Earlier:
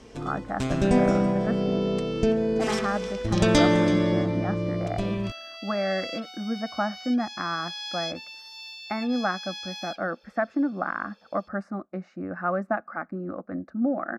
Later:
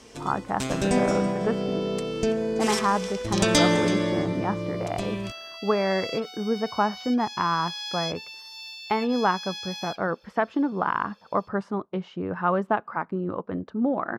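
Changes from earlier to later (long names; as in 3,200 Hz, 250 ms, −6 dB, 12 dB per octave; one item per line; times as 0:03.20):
speech: remove phaser with its sweep stopped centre 640 Hz, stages 8
first sound: add spectral tilt +1.5 dB per octave
master: add high-shelf EQ 8,100 Hz +7.5 dB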